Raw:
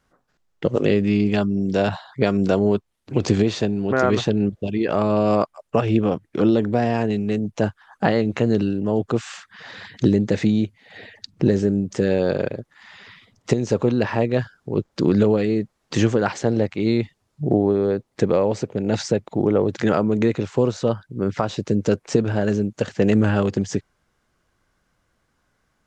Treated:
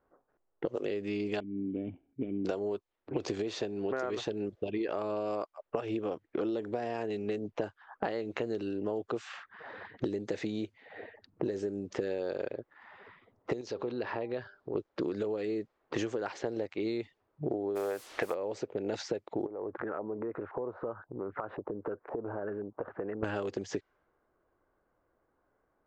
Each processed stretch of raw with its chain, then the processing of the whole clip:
1.40–2.45 s: median filter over 41 samples + cascade formant filter i + bass shelf 200 Hz +8 dB
13.61–14.75 s: peaking EQ 4.5 kHz +12.5 dB 0.92 oct + compression 2:1, threshold -33 dBFS + de-hum 199.4 Hz, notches 5
17.75–18.33 s: high-order bell 1.3 kHz +13.5 dB 2.7 oct + added noise white -36 dBFS
19.46–23.23 s: LFO low-pass saw up 1.9 Hz 790–1700 Hz + compression 8:1, threshold -29 dBFS
whole clip: level-controlled noise filter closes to 1 kHz, open at -14.5 dBFS; resonant low shelf 260 Hz -9 dB, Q 1.5; compression 12:1, threshold -28 dBFS; trim -2 dB

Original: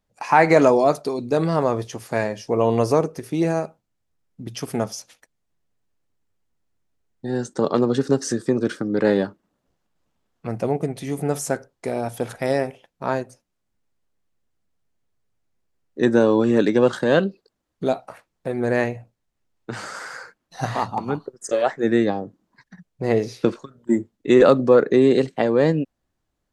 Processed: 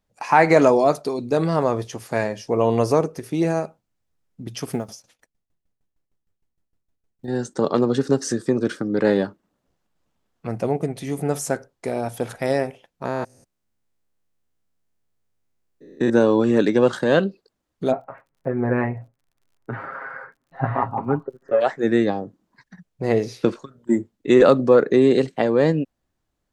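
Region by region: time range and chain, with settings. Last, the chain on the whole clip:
4.73–7.28 s: block-companded coder 7-bit + bass shelf 500 Hz +5 dB + sawtooth tremolo in dB decaying 6.5 Hz, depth 18 dB
13.05–16.10 s: spectrogram pixelated in time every 200 ms + treble shelf 9.7 kHz +5.5 dB
17.90–21.60 s: low-pass 1.9 kHz 24 dB/octave + comb 7.4 ms, depth 70% + crackle 47 per s -54 dBFS
whole clip: none

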